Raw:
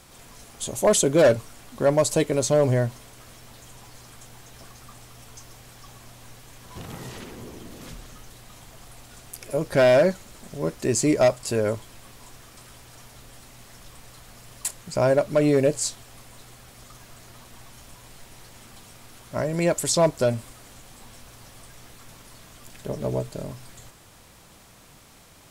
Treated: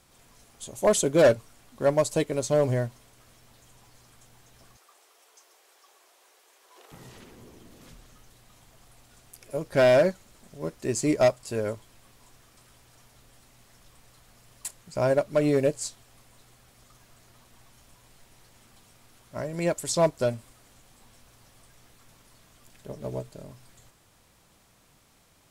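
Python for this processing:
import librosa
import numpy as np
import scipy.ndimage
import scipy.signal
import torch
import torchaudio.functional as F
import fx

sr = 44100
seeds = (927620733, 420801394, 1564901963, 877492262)

y = fx.cheby1_highpass(x, sr, hz=370.0, order=4, at=(4.77, 6.92))
y = fx.upward_expand(y, sr, threshold_db=-31.0, expansion=1.5)
y = y * librosa.db_to_amplitude(-1.0)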